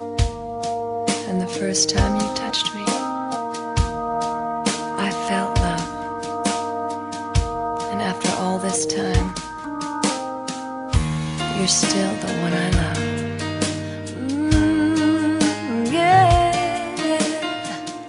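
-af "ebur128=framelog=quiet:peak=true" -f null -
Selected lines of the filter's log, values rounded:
Integrated loudness:
  I:         -21.6 LUFS
  Threshold: -31.6 LUFS
Loudness range:
  LRA:         5.2 LU
  Threshold: -41.7 LUFS
  LRA low:   -23.6 LUFS
  LRA high:  -18.4 LUFS
True peak:
  Peak:       -3.4 dBFS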